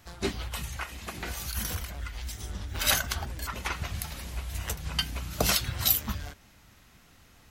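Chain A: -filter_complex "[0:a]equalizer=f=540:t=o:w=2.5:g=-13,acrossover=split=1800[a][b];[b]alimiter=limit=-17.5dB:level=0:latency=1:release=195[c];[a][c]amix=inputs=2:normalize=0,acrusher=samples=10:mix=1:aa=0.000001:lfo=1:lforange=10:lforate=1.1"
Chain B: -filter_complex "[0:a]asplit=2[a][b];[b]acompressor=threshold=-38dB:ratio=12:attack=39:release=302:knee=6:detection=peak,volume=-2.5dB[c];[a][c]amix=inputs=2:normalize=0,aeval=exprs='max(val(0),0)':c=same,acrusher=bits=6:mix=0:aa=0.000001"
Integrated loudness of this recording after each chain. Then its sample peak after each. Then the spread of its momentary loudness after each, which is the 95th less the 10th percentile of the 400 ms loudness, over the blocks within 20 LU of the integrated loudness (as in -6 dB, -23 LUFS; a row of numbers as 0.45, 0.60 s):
-36.0, -33.5 LUFS; -16.5, -7.0 dBFS; 9, 10 LU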